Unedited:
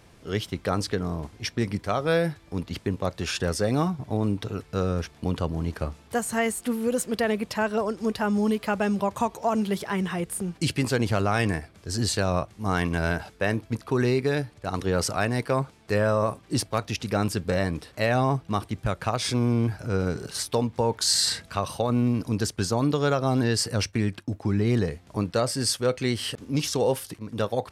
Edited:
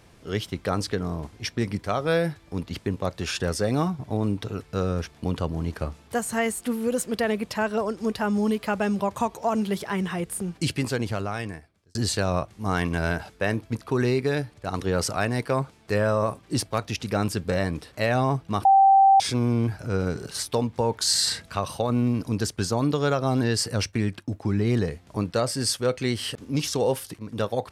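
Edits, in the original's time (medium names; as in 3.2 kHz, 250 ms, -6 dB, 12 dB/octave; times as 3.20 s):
10.62–11.95 s: fade out
18.65–19.20 s: bleep 780 Hz -12 dBFS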